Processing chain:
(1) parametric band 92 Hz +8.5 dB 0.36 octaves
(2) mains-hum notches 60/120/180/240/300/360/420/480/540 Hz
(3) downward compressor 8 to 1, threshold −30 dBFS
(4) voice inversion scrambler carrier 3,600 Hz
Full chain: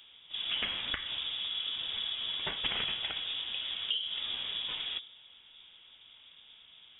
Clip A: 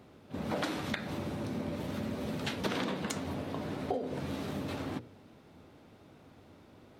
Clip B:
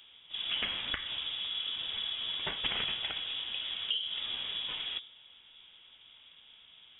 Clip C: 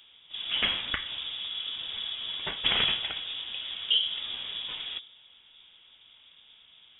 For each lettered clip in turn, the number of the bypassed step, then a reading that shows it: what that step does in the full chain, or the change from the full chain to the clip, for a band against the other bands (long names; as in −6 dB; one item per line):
4, 4 kHz band −30.5 dB
1, change in momentary loudness spread −16 LU
3, change in momentary loudness spread −10 LU